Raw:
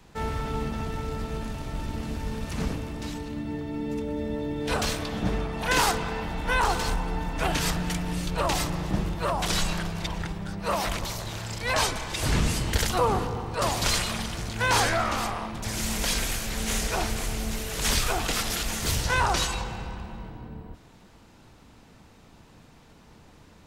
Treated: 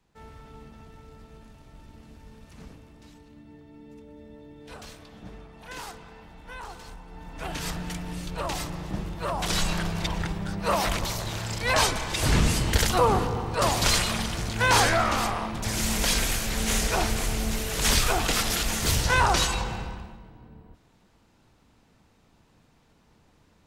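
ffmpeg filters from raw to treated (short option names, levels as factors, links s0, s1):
-af "volume=1.33,afade=t=in:st=7.08:d=0.66:silence=0.266073,afade=t=in:st=9.1:d=0.82:silence=0.421697,afade=t=out:st=19.74:d=0.46:silence=0.281838"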